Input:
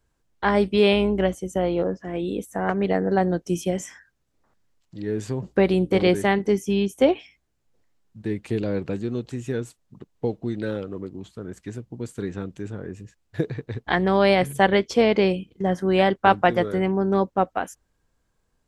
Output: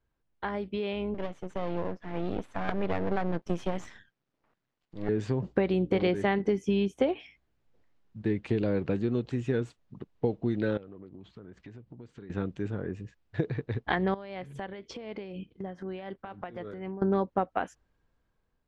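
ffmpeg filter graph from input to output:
-filter_complex "[0:a]asettb=1/sr,asplit=3[s0][s1][s2];[s0]atrim=end=1.144[s3];[s1]atrim=start=1.14:end=5.09,asetpts=PTS-STARTPTS,afade=t=in:d=0.004:c=qsin,afade=t=out:st=3.946:d=0.004:c=qsin,highpass=f=110:w=0.5412,highpass=f=110:w=1.3066,aeval=exprs='max(val(0),0)':c=same[s4];[s2]atrim=start=5.086[s5];[s3][s4]acrossfade=d=0.004:c1=hsin:c2=qsin[s6];[s6][s5]acrossfade=d=0.004:c1=qsin:c2=hsin,asettb=1/sr,asplit=3[s7][s8][s9];[s7]atrim=end=10.774[s10];[s8]atrim=start=10.77:end=12.3,asetpts=PTS-STARTPTS,afade=t=in:d=0.004:c=qsin,afade=t=out:st=1.526:d=0.004:c=qsin,lowpass=5300,acompressor=threshold=0.00631:ratio=5:attack=3.2:release=140:knee=1:detection=peak[s11];[s9]atrim=start=12.296[s12];[s10][s11]acrossfade=d=0.004:c1=hsin:c2=qsin[s13];[s13][s12]acrossfade=d=0.004:c1=qsin:c2=hsin,asettb=1/sr,asplit=3[s14][s15][s16];[s14]atrim=end=14.144[s17];[s15]atrim=start=14.14:end=17.02,asetpts=PTS-STARTPTS,afade=t=in:d=0.004:c=qsin,afade=t=out:st=2.876:d=0.004:c=qsin,acompressor=threshold=0.0251:ratio=10:attack=3.2:release=140:knee=1:detection=peak,tremolo=f=4:d=0.51[s18];[s16]atrim=start=17.016[s19];[s17][s18]acrossfade=d=0.004:c1=hsin:c2=qsin[s20];[s20][s19]acrossfade=d=0.004:c1=qsin:c2=hsin,acompressor=threshold=0.0794:ratio=12,lowpass=3700,dynaudnorm=f=660:g=5:m=2.51,volume=0.422"

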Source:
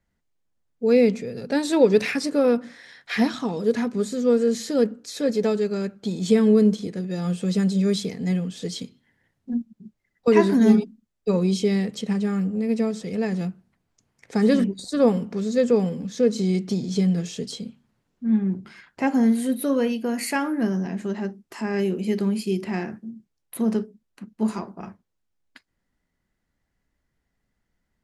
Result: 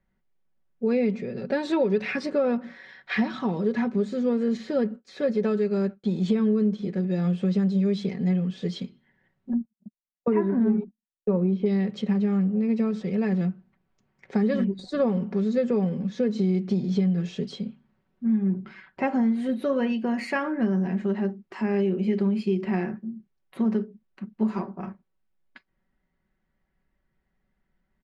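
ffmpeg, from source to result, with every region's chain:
-filter_complex "[0:a]asettb=1/sr,asplit=3[s0][s1][s2];[s0]atrim=end=4.574[s3];[s1]atrim=start=4.57:end=6.23,asetpts=PTS-STARTPTS,afade=t=in:d=0.004:c=qsin,afade=t=out:st=1.656:d=0.004:c=qsin,agate=range=0.0224:threshold=0.0126:ratio=3:release=100:detection=peak,highshelf=f=8900:g=10.5,acrossover=split=3400[s4][s5];[s5]acompressor=threshold=0.00794:ratio=4:attack=1:release=60[s6];[s4][s6]amix=inputs=2:normalize=0[s7];[s2]atrim=start=6.226[s8];[s3][s7]acrossfade=d=0.004:c1=hsin:c2=qsin[s9];[s9][s8]acrossfade=d=0.004:c1=qsin:c2=hsin,asettb=1/sr,asplit=3[s10][s11][s12];[s10]atrim=end=9.534[s13];[s11]atrim=start=9.53:end=11.66,asetpts=PTS-STARTPTS,afade=t=in:d=0.004:c=qsin,afade=t=out:st=2.126:d=0.004:c=qsin,lowpass=1500,agate=range=0.0224:threshold=0.00891:ratio=16:release=100:detection=peak[s14];[s12]atrim=start=11.656[s15];[s13][s14]acrossfade=d=0.004:c1=hsin:c2=qsin[s16];[s16][s15]acrossfade=d=0.004:c1=qsin:c2=hsin,lowpass=2800,aecho=1:1:5.3:0.53,acompressor=threshold=0.1:ratio=5"

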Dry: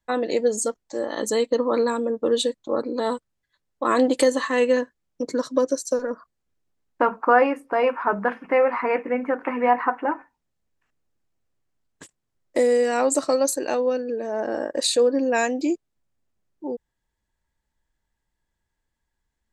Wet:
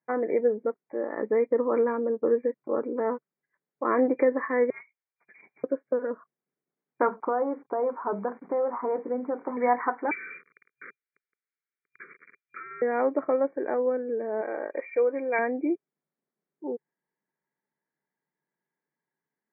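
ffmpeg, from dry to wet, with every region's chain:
-filter_complex "[0:a]asettb=1/sr,asplit=3[s0][s1][s2];[s0]atrim=end=4.704[s3];[s1]atrim=start=4.7:end=5.64,asetpts=PTS-STARTPTS,afade=t=in:d=0.004:c=qsin,afade=t=out:st=0.936:d=0.004:c=qsin,lowpass=f=3300:t=q:w=0.5098,lowpass=f=3300:t=q:w=0.6013,lowpass=f=3300:t=q:w=0.9,lowpass=f=3300:t=q:w=2.563,afreqshift=-3900,asoftclip=type=hard:threshold=0.0596[s4];[s2]atrim=start=5.636[s5];[s3][s4]acrossfade=d=0.004:c1=hsin:c2=qsin[s6];[s6][s5]acrossfade=d=0.004:c1=qsin:c2=hsin,asettb=1/sr,asplit=3[s7][s8][s9];[s7]atrim=end=7.204[s10];[s8]atrim=start=7.2:end=9.57,asetpts=PTS-STARTPTS,afade=t=in:d=0.004:c=qsin,afade=t=out:st=2.366:d=0.004:c=qsin,lowpass=f=1200:w=0.5412,lowpass=f=1200:w=1.3066,acrusher=bits=7:mix=0:aa=0.5,acompressor=threshold=0.1:ratio=2.5:attack=3.2:release=140:knee=1:detection=peak[s11];[s9]atrim=start=9.566[s12];[s10][s11]acrossfade=d=0.004:c1=hsin:c2=qsin[s13];[s13][s12]acrossfade=d=0.004:c1=qsin:c2=hsin,asettb=1/sr,asplit=3[s14][s15][s16];[s14]atrim=end=10.114[s17];[s15]atrim=start=10.11:end=12.82,asetpts=PTS-STARTPTS,afade=t=in:d=0.004:c=qsin,afade=t=out:st=2.706:d=0.004:c=qsin,aeval=exprs='val(0)+0.5*0.0447*sgn(val(0))':c=same,lowpass=f=2800:t=q:w=0.5098,lowpass=f=2800:t=q:w=0.6013,lowpass=f=2800:t=q:w=0.9,lowpass=f=2800:t=q:w=2.563,afreqshift=-3300,asuperstop=centerf=770:order=8:qfactor=1.1[s18];[s16]atrim=start=12.816[s19];[s17][s18]acrossfade=d=0.004:c1=hsin:c2=qsin[s20];[s20][s19]acrossfade=d=0.004:c1=qsin:c2=hsin,asettb=1/sr,asplit=3[s21][s22][s23];[s21]atrim=end=14.414[s24];[s22]atrim=start=14.41:end=15.39,asetpts=PTS-STARTPTS,afade=t=in:d=0.004:c=qsin,afade=t=out:st=0.976:d=0.004:c=qsin,lowpass=f=2500:t=q:w=14,equalizer=f=200:w=1.1:g=-13,bandreject=f=1700:w=9.7[s25];[s23]atrim=start=15.386[s26];[s24][s25]acrossfade=d=0.004:c1=hsin:c2=qsin[s27];[s27][s26]acrossfade=d=0.004:c1=qsin:c2=hsin,afftfilt=real='re*between(b*sr/4096,130,2400)':imag='im*between(b*sr/4096,130,2400)':win_size=4096:overlap=0.75,equalizer=f=410:w=4.2:g=6.5,volume=0.562"

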